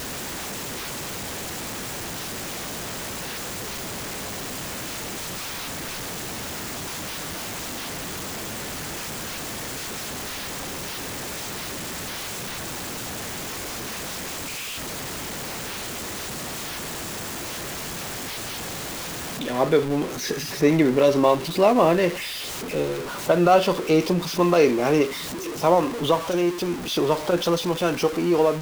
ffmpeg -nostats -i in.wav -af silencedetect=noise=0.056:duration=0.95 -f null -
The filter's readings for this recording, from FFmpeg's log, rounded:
silence_start: 0.00
silence_end: 19.41 | silence_duration: 19.41